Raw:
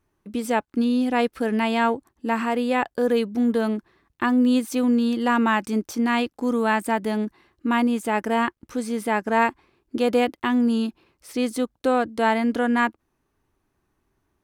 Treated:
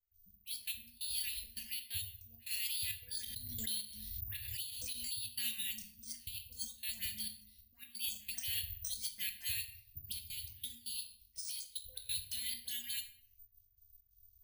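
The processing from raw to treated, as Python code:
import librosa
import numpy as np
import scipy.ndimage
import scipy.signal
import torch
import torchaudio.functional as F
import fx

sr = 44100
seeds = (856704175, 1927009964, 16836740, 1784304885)

y = fx.hum_notches(x, sr, base_hz=60, count=2)
y = fx.noise_reduce_blind(y, sr, reduce_db=11)
y = scipy.signal.sosfilt(scipy.signal.cheby2(4, 60, [240.0, 1400.0], 'bandstop', fs=sr, output='sos'), y)
y = fx.low_shelf(y, sr, hz=170.0, db=3.5)
y = fx.over_compress(y, sr, threshold_db=-52.0, ratio=-1.0)
y = fx.dispersion(y, sr, late='highs', ms=146.0, hz=1200.0)
y = fx.step_gate(y, sr, bpm=134, pattern='.xx.x.xx.xxxx', floor_db=-24.0, edge_ms=4.5)
y = fx.room_shoebox(y, sr, seeds[0], volume_m3=97.0, walls='mixed', distance_m=0.54)
y = (np.kron(scipy.signal.resample_poly(y, 1, 3), np.eye(3)[0]) * 3)[:len(y)]
y = fx.pre_swell(y, sr, db_per_s=33.0, at=(3.14, 5.28))
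y = y * librosa.db_to_amplitude(6.0)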